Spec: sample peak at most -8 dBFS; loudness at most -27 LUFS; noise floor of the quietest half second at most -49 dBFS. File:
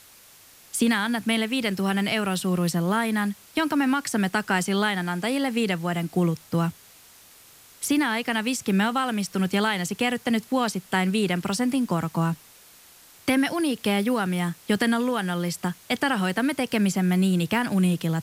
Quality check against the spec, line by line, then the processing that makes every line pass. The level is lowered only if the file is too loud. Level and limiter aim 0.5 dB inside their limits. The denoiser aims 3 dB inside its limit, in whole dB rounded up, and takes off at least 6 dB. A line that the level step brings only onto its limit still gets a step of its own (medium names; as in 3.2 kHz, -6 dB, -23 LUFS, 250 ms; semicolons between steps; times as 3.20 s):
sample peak -10.5 dBFS: pass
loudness -24.5 LUFS: fail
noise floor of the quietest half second -51 dBFS: pass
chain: trim -3 dB